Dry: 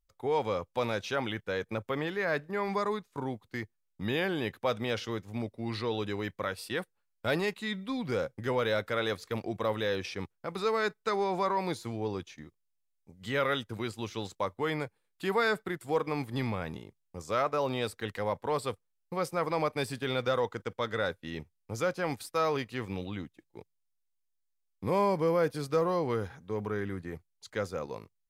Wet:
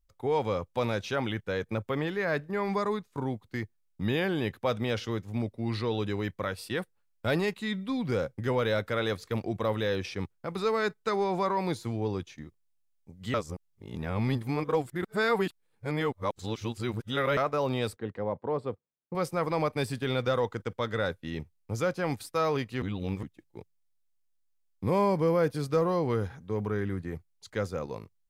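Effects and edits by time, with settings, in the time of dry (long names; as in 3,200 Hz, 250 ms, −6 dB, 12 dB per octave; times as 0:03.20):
0:13.34–0:17.37: reverse
0:17.96–0:19.15: resonant band-pass 340 Hz, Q 0.53
0:22.82–0:23.23: reverse
whole clip: low-shelf EQ 250 Hz +7 dB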